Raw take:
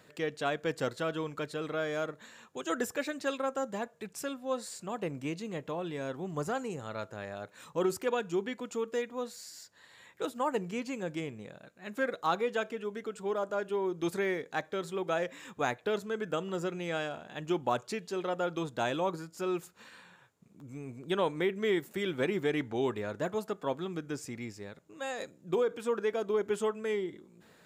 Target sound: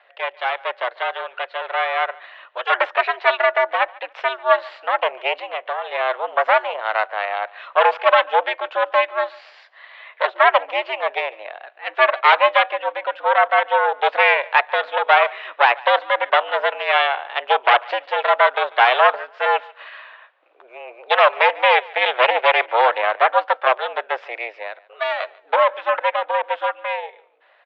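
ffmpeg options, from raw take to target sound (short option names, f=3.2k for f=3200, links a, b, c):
-filter_complex "[0:a]aeval=exprs='0.158*(cos(1*acos(clip(val(0)/0.158,-1,1)))-cos(1*PI/2))+0.0355*(cos(5*acos(clip(val(0)/0.158,-1,1)))-cos(5*PI/2))+0.0708*(cos(6*acos(clip(val(0)/0.158,-1,1)))-cos(6*PI/2))+0.0141*(cos(7*acos(clip(val(0)/0.158,-1,1)))-cos(7*PI/2))':c=same,dynaudnorm=f=270:g=17:m=10dB,aecho=1:1:144|288:0.0668|0.016,asettb=1/sr,asplit=3[a][b][c];[a]atrim=end=5.344[d];[b]atrim=start=5.34:end=5.92,asetpts=PTS-STARTPTS,afade=t=in:d=0.004:c=qsin,afade=t=out:st=0.576:d=0.004:c=qsin,acompressor=threshold=-22dB:ratio=6[e];[c]atrim=start=5.916[f];[d][e]acrossfade=d=0.004:c1=hsin:c2=qsin[g];[g][f]acrossfade=d=0.004:c1=qsin:c2=hsin,highpass=f=480:t=q:w=0.5412,highpass=f=480:t=q:w=1.307,lowpass=f=3.2k:t=q:w=0.5176,lowpass=f=3.2k:t=q:w=0.7071,lowpass=f=3.2k:t=q:w=1.932,afreqshift=110,volume=4dB"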